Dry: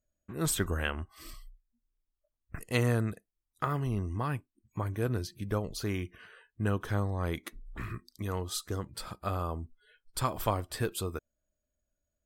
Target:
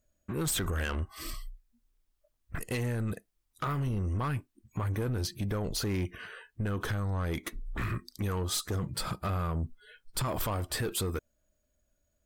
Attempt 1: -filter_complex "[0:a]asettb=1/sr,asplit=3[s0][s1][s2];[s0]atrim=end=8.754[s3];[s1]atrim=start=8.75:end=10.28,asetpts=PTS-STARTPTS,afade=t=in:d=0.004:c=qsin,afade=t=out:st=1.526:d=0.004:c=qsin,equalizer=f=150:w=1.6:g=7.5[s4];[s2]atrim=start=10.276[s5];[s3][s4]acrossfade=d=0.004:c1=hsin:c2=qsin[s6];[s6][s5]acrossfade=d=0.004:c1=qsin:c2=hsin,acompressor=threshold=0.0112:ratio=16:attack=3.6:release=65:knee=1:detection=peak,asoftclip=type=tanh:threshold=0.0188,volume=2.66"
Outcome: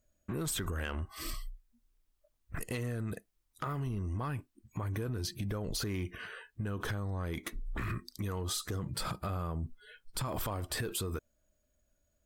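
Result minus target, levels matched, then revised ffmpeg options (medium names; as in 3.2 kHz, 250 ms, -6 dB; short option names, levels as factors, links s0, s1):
compression: peak gain reduction +7 dB
-filter_complex "[0:a]asettb=1/sr,asplit=3[s0][s1][s2];[s0]atrim=end=8.754[s3];[s1]atrim=start=8.75:end=10.28,asetpts=PTS-STARTPTS,afade=t=in:d=0.004:c=qsin,afade=t=out:st=1.526:d=0.004:c=qsin,equalizer=f=150:w=1.6:g=7.5[s4];[s2]atrim=start=10.276[s5];[s3][s4]acrossfade=d=0.004:c1=hsin:c2=qsin[s6];[s6][s5]acrossfade=d=0.004:c1=qsin:c2=hsin,acompressor=threshold=0.0266:ratio=16:attack=3.6:release=65:knee=1:detection=peak,asoftclip=type=tanh:threshold=0.0188,volume=2.66"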